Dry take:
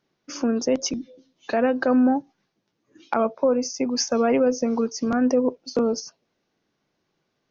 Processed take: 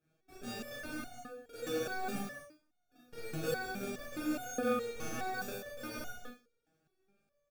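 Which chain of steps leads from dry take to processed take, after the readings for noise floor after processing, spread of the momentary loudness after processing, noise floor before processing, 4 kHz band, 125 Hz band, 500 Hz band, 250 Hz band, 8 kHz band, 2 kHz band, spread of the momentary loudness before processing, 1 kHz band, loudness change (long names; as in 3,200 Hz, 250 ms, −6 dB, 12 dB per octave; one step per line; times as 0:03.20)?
−79 dBFS, 14 LU, −76 dBFS, −14.0 dB, −5.5 dB, −17.0 dB, −19.5 dB, can't be measured, −6.5 dB, 9 LU, −12.5 dB, −16.5 dB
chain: sub-octave generator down 1 octave, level −3 dB
high-pass filter 52 Hz
reversed playback
downward compressor 4 to 1, threshold −33 dBFS, peak gain reduction 16.5 dB
reversed playback
sample-rate reduction 1,000 Hz, jitter 0%
on a send: single-tap delay 177 ms −3.5 dB
on the sum: four-comb reverb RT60 0.32 s, combs from 26 ms, DRR −0.5 dB
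step-sequenced resonator 4.8 Hz 160–720 Hz
level +6 dB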